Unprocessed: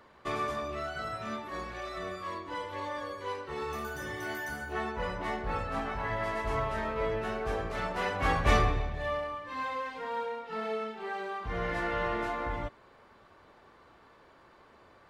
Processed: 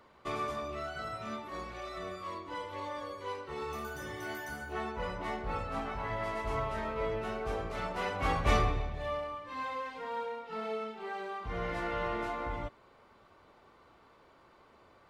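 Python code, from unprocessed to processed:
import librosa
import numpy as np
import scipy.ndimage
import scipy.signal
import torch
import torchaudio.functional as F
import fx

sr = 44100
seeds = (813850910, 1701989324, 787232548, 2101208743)

y = fx.notch(x, sr, hz=1700.0, q=8.8)
y = y * librosa.db_to_amplitude(-2.5)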